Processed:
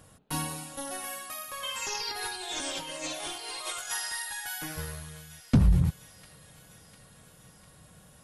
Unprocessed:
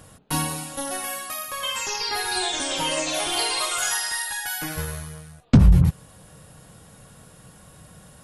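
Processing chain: 1.82–3.91 negative-ratio compressor -28 dBFS, ratio -0.5; thin delay 0.7 s, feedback 65%, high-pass 1700 Hz, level -16 dB; gain -7.5 dB

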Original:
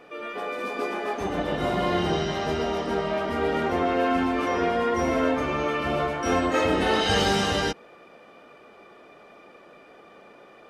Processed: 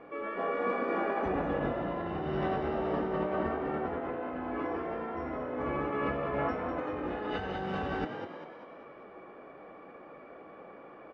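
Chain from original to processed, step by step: LPF 1700 Hz 12 dB/oct; negative-ratio compressor -30 dBFS, ratio -1; frequency-shifting echo 0.19 s, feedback 50%, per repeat +59 Hz, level -7.5 dB; on a send at -10 dB: reverb RT60 0.50 s, pre-delay 3 ms; on the sum: speed mistake 25 fps video run at 24 fps; gain -4.5 dB

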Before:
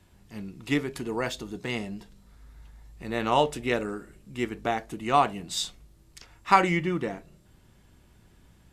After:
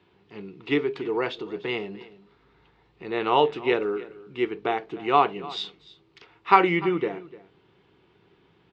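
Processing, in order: speaker cabinet 200–3600 Hz, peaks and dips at 230 Hz -10 dB, 410 Hz +8 dB, 600 Hz -8 dB, 1700 Hz -5 dB; echo 0.298 s -19 dB; gain +3.5 dB

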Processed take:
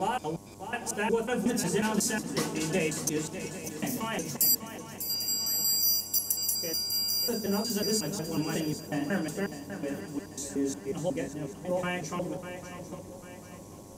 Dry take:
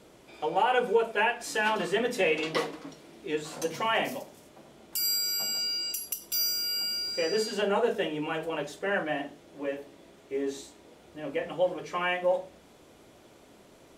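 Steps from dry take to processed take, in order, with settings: slices in reverse order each 0.182 s, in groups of 4; EQ curve 220 Hz 0 dB, 510 Hz -15 dB, 3400 Hz -15 dB, 6100 Hz +1 dB; vocal rider within 3 dB 2 s; on a send: swung echo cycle 0.796 s, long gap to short 3:1, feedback 42%, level -11 dB; on the sum: buzz 100 Hz, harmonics 11, -59 dBFS -3 dB/oct; gain +6.5 dB

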